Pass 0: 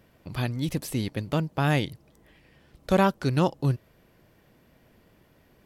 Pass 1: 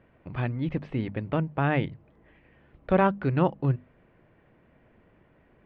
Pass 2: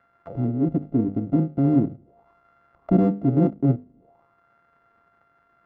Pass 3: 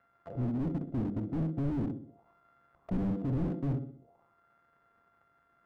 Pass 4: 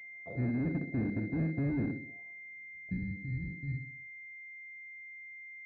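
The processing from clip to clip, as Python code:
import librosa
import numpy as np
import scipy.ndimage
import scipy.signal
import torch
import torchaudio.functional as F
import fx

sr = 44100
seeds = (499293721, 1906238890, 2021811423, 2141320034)

y1 = scipy.signal.sosfilt(scipy.signal.butter(4, 2500.0, 'lowpass', fs=sr, output='sos'), x)
y1 = fx.hum_notches(y1, sr, base_hz=50, count=5)
y2 = np.r_[np.sort(y1[:len(y1) // 64 * 64].reshape(-1, 64), axis=1).ravel(), y1[len(y1) // 64 * 64:]]
y2 = fx.tilt_eq(y2, sr, slope=-3.5)
y2 = fx.auto_wah(y2, sr, base_hz=280.0, top_hz=1600.0, q=3.5, full_db=-24.0, direction='down')
y2 = y2 * librosa.db_to_amplitude(9.0)
y3 = fx.echo_feedback(y2, sr, ms=63, feedback_pct=46, wet_db=-10.5)
y3 = fx.slew_limit(y3, sr, full_power_hz=16.0)
y3 = y3 * librosa.db_to_amplitude(-6.5)
y4 = scipy.signal.sosfilt(scipy.signal.butter(2, 57.0, 'highpass', fs=sr, output='sos'), y3)
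y4 = fx.filter_sweep_lowpass(y4, sr, from_hz=820.0, to_hz=110.0, start_s=2.21, end_s=3.12, q=0.84)
y4 = fx.pwm(y4, sr, carrier_hz=2100.0)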